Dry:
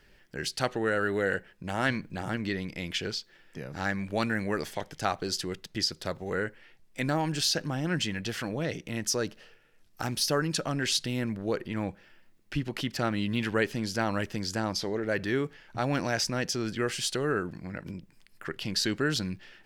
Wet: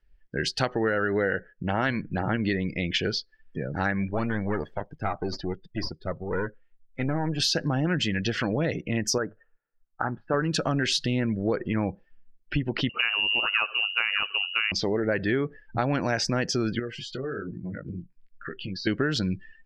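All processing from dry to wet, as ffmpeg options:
-filter_complex "[0:a]asettb=1/sr,asplit=3[s0][s1][s2];[s0]atrim=end=4.104[s3];[s1]atrim=start=4.1:end=7.4,asetpts=PTS-STARTPTS,afade=t=in:d=0.004:c=qsin,afade=t=out:st=3.296:d=0.004:c=qsin,aeval=exprs='(tanh(22.4*val(0)+0.7)-tanh(0.7))/22.4':c=same,highshelf=f=4300:g=-9.5[s4];[s2]atrim=start=7.396[s5];[s3][s4]acrossfade=d=0.004:c1=hsin:c2=qsin[s6];[s6][s5]acrossfade=d=0.004:c1=qsin:c2=hsin,asettb=1/sr,asplit=3[s7][s8][s9];[s7]atrim=end=9.184[s10];[s8]atrim=start=9.18:end=10.34,asetpts=PTS-STARTPTS,afade=t=in:d=0.004:c=qsin,afade=t=out:st=1.156:d=0.004:c=qsin,lowpass=f=1500:w=0.5412,lowpass=f=1500:w=1.3066,tiltshelf=f=930:g=-7.5,bandreject=f=50:t=h:w=6,bandreject=f=100:t=h:w=6,bandreject=f=150:t=h:w=6[s11];[s9]atrim=start=10.336[s12];[s10][s11]acrossfade=d=0.004:c1=hsin:c2=qsin[s13];[s13][s12]acrossfade=d=0.004:c1=qsin:c2=hsin,asettb=1/sr,asplit=3[s14][s15][s16];[s14]atrim=end=12.894[s17];[s15]atrim=start=12.89:end=14.72,asetpts=PTS-STARTPTS,afade=t=in:d=0.004:c=qsin,afade=t=out:st=1.826:d=0.004:c=qsin,aecho=1:1:78|156|234|312:0.0944|0.0491|0.0255|0.0133,atrim=end_sample=80703,lowpass=f=2600:t=q:w=0.5098,lowpass=f=2600:t=q:w=0.6013,lowpass=f=2600:t=q:w=0.9,lowpass=f=2600:t=q:w=2.563,afreqshift=-3000[s18];[s16]atrim=start=14.716[s19];[s17][s18]acrossfade=d=0.004:c1=hsin:c2=qsin[s20];[s20][s19]acrossfade=d=0.004:c1=qsin:c2=hsin,asettb=1/sr,asplit=3[s21][s22][s23];[s21]atrim=end=16.794[s24];[s22]atrim=start=16.79:end=18.87,asetpts=PTS-STARTPTS,afade=t=in:d=0.004:c=qsin,afade=t=out:st=2.076:d=0.004:c=qsin,flanger=delay=16.5:depth=6.5:speed=1.2,highshelf=f=6300:g=-4.5,acompressor=threshold=0.0126:ratio=4:attack=3.2:release=140:knee=1:detection=peak[s25];[s23]atrim=start=18.866[s26];[s24][s25]acrossfade=d=0.004:c1=hsin:c2=qsin[s27];[s27][s26]acrossfade=d=0.004:c1=qsin:c2=hsin,afftdn=nr=28:nf=-43,equalizer=f=10000:t=o:w=1.1:g=-12.5,acompressor=threshold=0.0316:ratio=6,volume=2.66"

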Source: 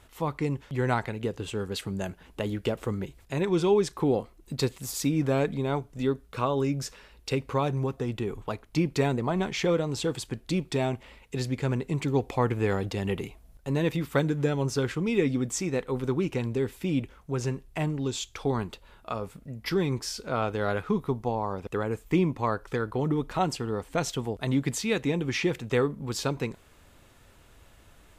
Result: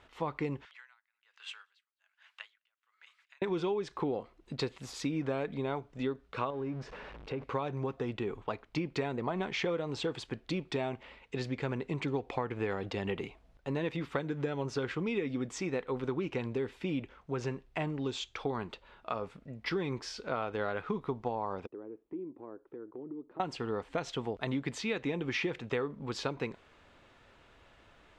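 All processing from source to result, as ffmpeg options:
-filter_complex "[0:a]asettb=1/sr,asplit=3[s0][s1][s2];[s0]atrim=end=0.654[s3];[s1]atrim=start=0.65:end=3.42,asetpts=PTS-STARTPTS,afade=t=in:d=0.004:c=qsin,afade=t=out:st=2.766:d=0.004:c=qsin,highpass=f=1300:w=0.5412,highpass=f=1300:w=1.3066,aecho=1:1:204:0.0794,atrim=end_sample=122157,aeval=exprs='val(0)*pow(10,-40*(0.5-0.5*cos(2*PI*1.2*n/s))/20)':c=same[s4];[s2]atrim=start=3.416[s5];[s3][s4]acrossfade=d=0.004:c1=hsin:c2=qsin[s6];[s6][s5]acrossfade=d=0.004:c1=qsin:c2=hsin,asettb=1/sr,asplit=3[s7][s8][s9];[s7]atrim=end=6.504[s10];[s8]atrim=start=6.5:end=7.44,asetpts=PTS-STARTPTS,afade=t=in:d=0.004:c=qsin,afade=t=out:st=0.936:d=0.004:c=qsin,aeval=exprs='val(0)+0.5*0.0168*sgn(val(0))':c=same,lowpass=f=1000:p=1,acompressor=threshold=0.0282:ratio=2.5:attack=3.2:release=140:knee=1:detection=peak[s11];[s9]atrim=start=7.436[s12];[s10][s11]acrossfade=d=0.004:c1=hsin:c2=qsin[s13];[s13][s12]acrossfade=d=0.004:c1=qsin:c2=hsin,asettb=1/sr,asplit=3[s14][s15][s16];[s14]atrim=end=21.664[s17];[s15]atrim=start=21.66:end=23.4,asetpts=PTS-STARTPTS,afade=t=in:d=0.004:c=qsin,afade=t=out:st=1.736:d=0.004:c=qsin,bandpass=f=330:t=q:w=3.7,acompressor=threshold=0.00794:ratio=2:attack=3.2:release=140:knee=1:detection=peak[s18];[s16]atrim=start=23.396[s19];[s17][s18]acrossfade=d=0.004:c1=hsin:c2=qsin[s20];[s20][s19]acrossfade=d=0.004:c1=qsin:c2=hsin,lowpass=3600,lowshelf=f=200:g=-10.5,acompressor=threshold=0.0355:ratio=10"

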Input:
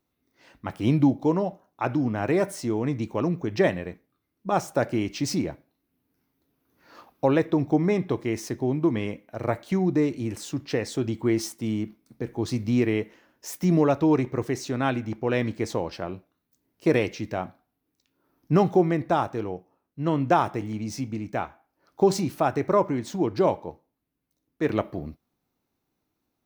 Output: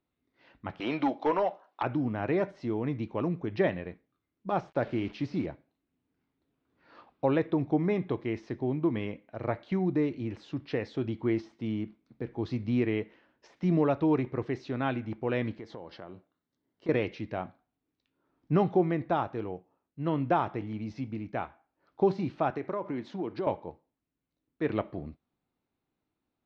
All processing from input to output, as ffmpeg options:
-filter_complex "[0:a]asettb=1/sr,asplit=3[s0][s1][s2];[s0]atrim=end=0.804[s3];[s1]atrim=start=0.8:end=1.83,asetpts=PTS-STARTPTS,afade=t=in:d=0.004:c=qsin,afade=t=out:st=1.026:d=0.004:c=qsin,highpass=660,aeval=exprs='0.188*sin(PI/2*2.24*val(0)/0.188)':c=same[s4];[s2]atrim=start=1.826[s5];[s3][s4]acrossfade=d=0.004:c1=hsin:c2=qsin[s6];[s6][s5]acrossfade=d=0.004:c1=qsin:c2=hsin,asettb=1/sr,asplit=3[s7][s8][s9];[s7]atrim=end=4.494[s10];[s8]atrim=start=4.49:end=5.46,asetpts=PTS-STARTPTS,afade=t=in:d=0.004:c=qsin,afade=t=out:st=0.966:d=0.004:c=qsin,bandreject=f=213.5:t=h:w=4,bandreject=f=427:t=h:w=4,acrusher=bits=6:mix=0:aa=0.5[s11];[s9]atrim=start=5.456[s12];[s10][s11]acrossfade=d=0.004:c1=hsin:c2=qsin[s13];[s13][s12]acrossfade=d=0.004:c1=qsin:c2=hsin,asettb=1/sr,asplit=3[s14][s15][s16];[s14]atrim=end=15.594[s17];[s15]atrim=start=15.59:end=16.89,asetpts=PTS-STARTPTS,afade=t=in:d=0.004:c=qsin,afade=t=out:st=1.296:d=0.004:c=qsin,highpass=f=130:p=1,bandreject=f=2500:w=5.4,acompressor=threshold=0.0158:ratio=3:attack=3.2:release=140:knee=1:detection=peak[s18];[s16]atrim=start=16.886[s19];[s17][s18]acrossfade=d=0.004:c1=hsin:c2=qsin[s20];[s20][s19]acrossfade=d=0.004:c1=qsin:c2=hsin,asettb=1/sr,asplit=3[s21][s22][s23];[s21]atrim=end=22.504[s24];[s22]atrim=start=22.5:end=23.47,asetpts=PTS-STARTPTS,afade=t=in:d=0.004:c=qsin,afade=t=out:st=0.966:d=0.004:c=qsin,highpass=170,acompressor=threshold=0.0631:ratio=4:attack=3.2:release=140:knee=1:detection=peak[s25];[s23]atrim=start=23.466[s26];[s24][s25]acrossfade=d=0.004:c1=hsin:c2=qsin[s27];[s27][s26]acrossfade=d=0.004:c1=qsin:c2=hsin,deesser=0.85,lowpass=f=4000:w=0.5412,lowpass=f=4000:w=1.3066,volume=0.562"

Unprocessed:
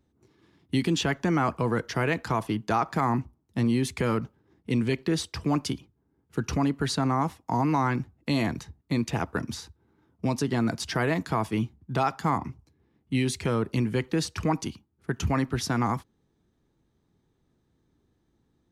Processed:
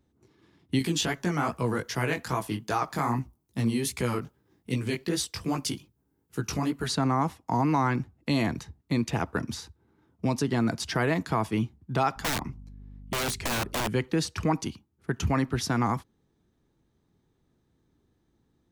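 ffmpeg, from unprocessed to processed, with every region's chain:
-filter_complex "[0:a]asettb=1/sr,asplit=3[s0][s1][s2];[s0]atrim=end=0.794[s3];[s1]atrim=start=0.79:end=6.88,asetpts=PTS-STARTPTS,afade=t=in:d=0.004:c=qsin,afade=t=out:st=6.086:d=0.004:c=qsin,aemphasis=mode=production:type=50kf,flanger=delay=15:depth=5.7:speed=2.5[s4];[s2]atrim=start=6.876[s5];[s3][s4]acrossfade=d=0.004:c1=hsin:c2=qsin[s6];[s6][s5]acrossfade=d=0.004:c1=qsin:c2=hsin,asettb=1/sr,asplit=3[s7][s8][s9];[s7]atrim=end=12.164[s10];[s8]atrim=start=12.16:end=13.88,asetpts=PTS-STARTPTS,afade=t=in:d=0.004:c=qsin,afade=t=out:st=1.716:d=0.004:c=qsin,aeval=exprs='(mod(14.1*val(0)+1,2)-1)/14.1':c=same,aeval=exprs='val(0)+0.00631*(sin(2*PI*50*n/s)+sin(2*PI*2*50*n/s)/2+sin(2*PI*3*50*n/s)/3+sin(2*PI*4*50*n/s)/4+sin(2*PI*5*50*n/s)/5)':c=same[s11];[s9]atrim=start=13.876[s12];[s10][s11]acrossfade=d=0.004:c1=hsin:c2=qsin[s13];[s13][s12]acrossfade=d=0.004:c1=qsin:c2=hsin"

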